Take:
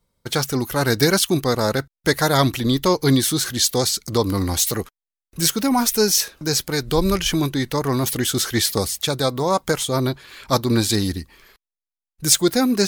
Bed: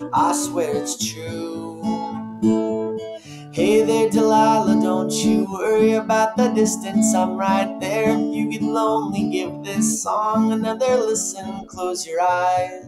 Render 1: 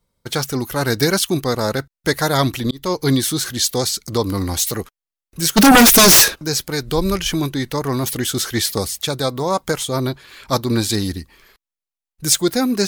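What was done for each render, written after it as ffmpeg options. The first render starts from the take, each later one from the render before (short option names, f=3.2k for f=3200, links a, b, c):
-filter_complex "[0:a]asplit=3[a][b][c];[a]afade=t=out:st=5.56:d=0.02[d];[b]aeval=exprs='0.562*sin(PI/2*5.01*val(0)/0.562)':c=same,afade=t=in:st=5.56:d=0.02,afade=t=out:st=6.34:d=0.02[e];[c]afade=t=in:st=6.34:d=0.02[f];[d][e][f]amix=inputs=3:normalize=0,asplit=2[g][h];[g]atrim=end=2.71,asetpts=PTS-STARTPTS,afade=t=out:st=2.706:d=0.004:c=hsin[i];[h]atrim=start=2.71,asetpts=PTS-STARTPTS,afade=t=in:d=0.4:c=qsin[j];[i][j]concat=n=2:v=0:a=1"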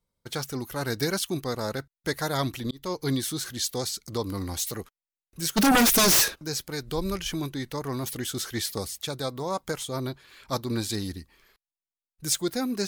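-af "volume=-10.5dB"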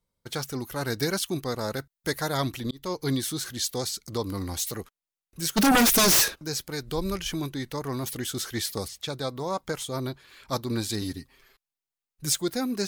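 -filter_complex "[0:a]asettb=1/sr,asplit=3[a][b][c];[a]atrim=end=1.724[d];[b]atrim=start=1.72:end=2.19,asetpts=PTS-STARTPTS,afade=t=in:d=0.004:c=qsin,afade=t=out:st=0.466:d=0.004:c=qsin,highshelf=f=9.2k:g=7.5[e];[c]atrim=start=2.186[f];[d][e]acrossfade=d=0.004:c1=hsin:c2=qsin[g];[g][f]acrossfade=d=0.004:c1=qsin:c2=hsin,asettb=1/sr,asplit=3[h][i][j];[h]atrim=end=8.884[k];[i]atrim=start=8.88:end=9.74,asetpts=PTS-STARTPTS,afade=t=in:d=0.004:c=qsin,afade=t=out:st=0.856:d=0.004:c=qsin,acrossover=split=6300[l][m];[m]acompressor=threshold=-48dB:ratio=4:attack=1:release=60[n];[l][n]amix=inputs=2:normalize=0[o];[j]atrim=start=9.736[p];[k][o]acrossfade=d=0.004:c1=hsin:c2=qsin[q];[q][p]acrossfade=d=0.004:c1=qsin:c2=hsin,asettb=1/sr,asplit=3[r][s][t];[r]atrim=end=11.014[u];[s]atrim=start=11.01:end=12.32,asetpts=PTS-STARTPTS,afade=t=in:d=0.004:c=qsin,afade=t=out:st=1.306:d=0.004:c=qsin,aecho=1:1:7.5:0.65,atrim=end_sample=57771[v];[t]atrim=start=12.316[w];[u][v]acrossfade=d=0.004:c1=hsin:c2=qsin[x];[x][w]acrossfade=d=0.004:c1=qsin:c2=hsin"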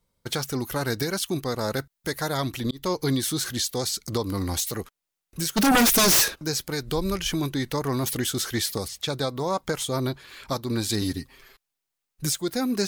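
-filter_complex "[0:a]asplit=2[a][b];[b]acompressor=threshold=-31dB:ratio=6,volume=2dB[c];[a][c]amix=inputs=2:normalize=0,alimiter=limit=-14.5dB:level=0:latency=1:release=471"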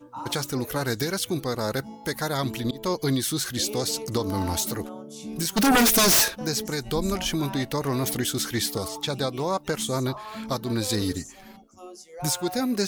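-filter_complex "[1:a]volume=-19dB[a];[0:a][a]amix=inputs=2:normalize=0"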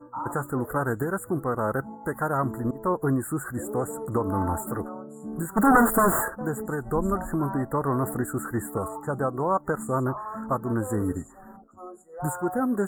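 -af "afftfilt=real='re*(1-between(b*sr/4096,2000,6900))':imag='im*(1-between(b*sr/4096,2000,6900))':win_size=4096:overlap=0.75,highshelf=f=1.7k:t=q:w=3:g=-8"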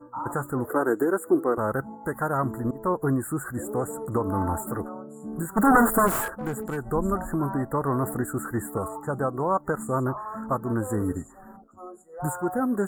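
-filter_complex "[0:a]asettb=1/sr,asplit=3[a][b][c];[a]atrim=end=0.704[d];[b]atrim=start=0.7:end=1.58,asetpts=PTS-STARTPTS,afade=t=in:d=0.004:c=qsin,afade=t=out:st=0.876:d=0.004:c=qsin,highpass=f=330:t=q:w=2.7[e];[c]atrim=start=1.576[f];[d][e]acrossfade=d=0.004:c1=hsin:c2=qsin[g];[g][f]acrossfade=d=0.004:c1=qsin:c2=hsin,asplit=3[h][i][j];[h]afade=t=out:st=6.06:d=0.02[k];[i]aeval=exprs='clip(val(0),-1,0.0422)':c=same,afade=t=in:st=6.06:d=0.02,afade=t=out:st=6.76:d=0.02[l];[j]afade=t=in:st=6.76:d=0.02[m];[k][l][m]amix=inputs=3:normalize=0"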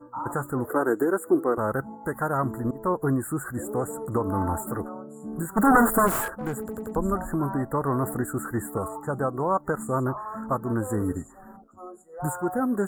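-filter_complex "[0:a]asplit=5[a][b][c][d][e];[a]atrim=end=6.692[f];[b]atrim=start=6.598:end=6.692[g];[c]atrim=start=6.598:end=6.692[h];[d]atrim=start=6.598:end=6.692[i];[e]atrim=start=6.958[j];[f][g]acrossfade=d=0.004:c1=hsin:c2=hsin[k];[k][h]acrossfade=d=0.004:c1=hsin:c2=hsin[l];[l][i]acrossfade=d=0.004:c1=hsin:c2=hsin[m];[m][j]acrossfade=d=0.004:c1=hsin:c2=hsin"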